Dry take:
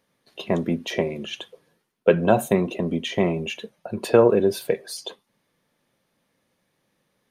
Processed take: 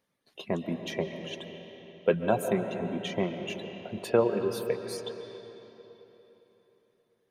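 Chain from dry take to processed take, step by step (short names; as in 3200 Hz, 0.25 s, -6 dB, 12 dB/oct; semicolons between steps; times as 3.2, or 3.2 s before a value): reverb removal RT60 1.4 s; on a send: reverb RT60 3.6 s, pre-delay 0.1 s, DRR 6 dB; on the sum: gain -7.5 dB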